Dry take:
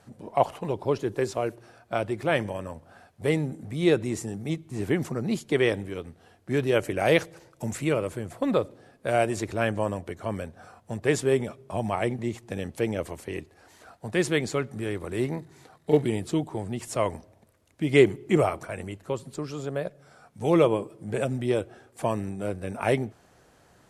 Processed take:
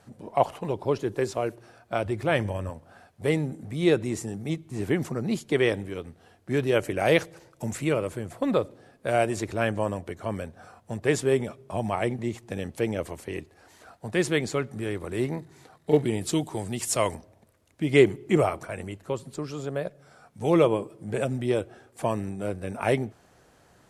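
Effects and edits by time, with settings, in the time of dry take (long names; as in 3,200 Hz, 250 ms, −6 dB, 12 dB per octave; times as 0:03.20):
0:02.05–0:02.70: parametric band 82 Hz +11.5 dB
0:16.21–0:17.15: high-shelf EQ 2,800 Hz +11.5 dB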